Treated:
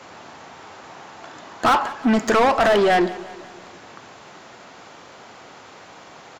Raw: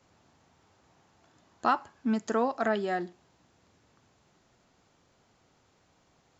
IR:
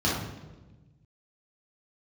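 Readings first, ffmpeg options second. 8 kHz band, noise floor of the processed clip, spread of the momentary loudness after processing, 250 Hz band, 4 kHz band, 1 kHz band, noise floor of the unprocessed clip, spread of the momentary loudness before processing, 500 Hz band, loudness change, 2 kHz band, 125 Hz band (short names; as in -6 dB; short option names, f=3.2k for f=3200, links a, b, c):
n/a, -44 dBFS, 10 LU, +10.0 dB, +17.5 dB, +11.5 dB, -68 dBFS, 5 LU, +12.5 dB, +11.5 dB, +13.5 dB, +11.0 dB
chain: -filter_complex "[0:a]asplit=2[a][b];[b]highpass=f=720:p=1,volume=31dB,asoftclip=type=tanh:threshold=-12dB[c];[a][c]amix=inputs=2:normalize=0,lowpass=f=2.4k:p=1,volume=-6dB,aecho=1:1:181|362|543|724|905:0.119|0.0654|0.036|0.0198|0.0109,volume=3.5dB"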